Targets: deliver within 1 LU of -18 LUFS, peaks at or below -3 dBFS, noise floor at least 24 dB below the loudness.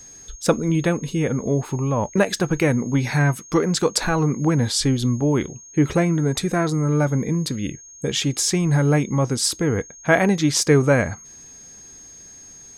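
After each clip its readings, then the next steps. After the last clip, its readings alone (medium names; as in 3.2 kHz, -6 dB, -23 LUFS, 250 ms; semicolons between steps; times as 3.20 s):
steady tone 6.5 kHz; tone level -41 dBFS; loudness -20.5 LUFS; peak level -2.5 dBFS; loudness target -18.0 LUFS
-> band-stop 6.5 kHz, Q 30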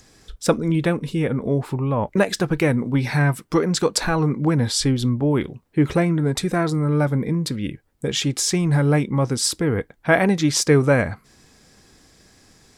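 steady tone not found; loudness -21.0 LUFS; peak level -2.5 dBFS; loudness target -18.0 LUFS
-> trim +3 dB; peak limiter -3 dBFS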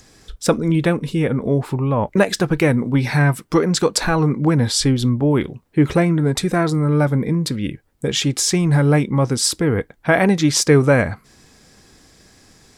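loudness -18.0 LUFS; peak level -3.0 dBFS; noise floor -55 dBFS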